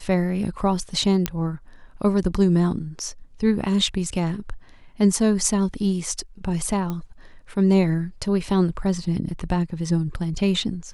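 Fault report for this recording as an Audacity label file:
1.260000	1.260000	click −6 dBFS
6.900000	6.900000	click −16 dBFS

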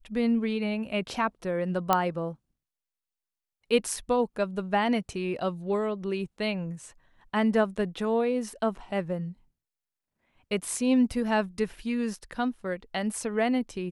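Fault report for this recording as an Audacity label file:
1.930000	1.930000	click −8 dBFS

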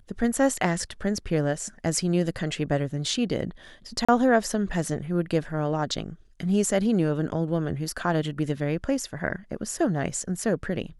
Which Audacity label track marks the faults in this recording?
4.050000	4.080000	drop-out 35 ms

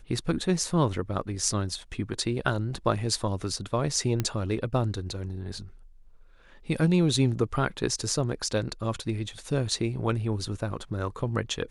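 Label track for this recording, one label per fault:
4.200000	4.200000	click −13 dBFS

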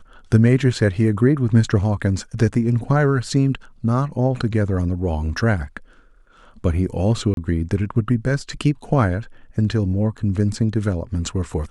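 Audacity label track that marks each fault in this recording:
7.340000	7.370000	drop-out 32 ms

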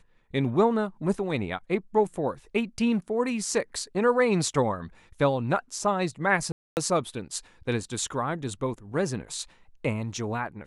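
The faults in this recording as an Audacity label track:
6.520000	6.770000	drop-out 249 ms

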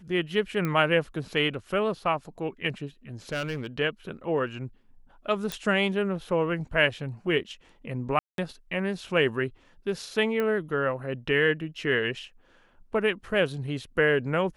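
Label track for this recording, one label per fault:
0.650000	0.650000	click −16 dBFS
3.320000	3.670000	clipping −25.5 dBFS
5.520000	5.520000	click
8.190000	8.380000	drop-out 192 ms
10.400000	10.400000	click −17 dBFS

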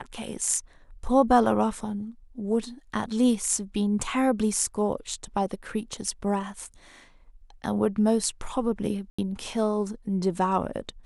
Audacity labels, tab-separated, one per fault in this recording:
9.100000	9.190000	drop-out 85 ms

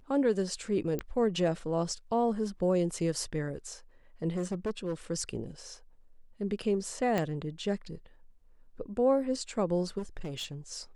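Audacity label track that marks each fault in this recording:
0.990000	0.990000	click −20 dBFS
4.360000	4.940000	clipping −28 dBFS
7.180000	7.180000	click −16 dBFS
9.980000	10.550000	clipping −33 dBFS

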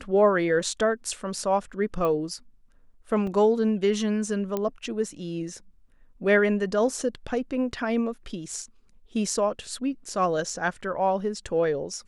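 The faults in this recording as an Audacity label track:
2.050000	2.050000	click −17 dBFS
3.270000	3.270000	drop-out 3.3 ms
4.570000	4.570000	click −15 dBFS

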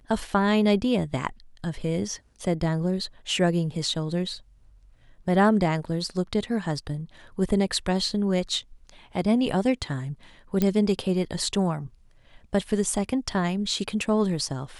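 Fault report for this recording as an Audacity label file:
10.620000	10.620000	click −10 dBFS

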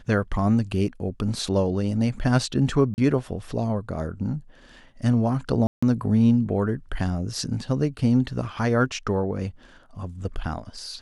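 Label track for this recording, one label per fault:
2.940000	2.980000	drop-out 39 ms
5.670000	5.830000	drop-out 155 ms

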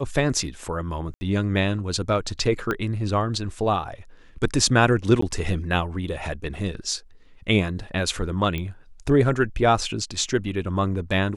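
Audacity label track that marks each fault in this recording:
1.140000	1.210000	drop-out 70 ms
2.710000	2.710000	click −12 dBFS
5.210000	5.220000	drop-out 14 ms
8.580000	8.580000	click −16 dBFS

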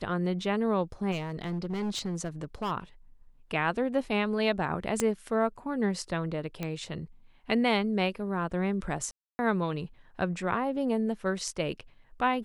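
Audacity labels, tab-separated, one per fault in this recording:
1.110000	2.720000	clipping −28 dBFS
5.000000	5.000000	click −13 dBFS
6.630000	6.630000	click −19 dBFS
9.110000	9.390000	drop-out 280 ms

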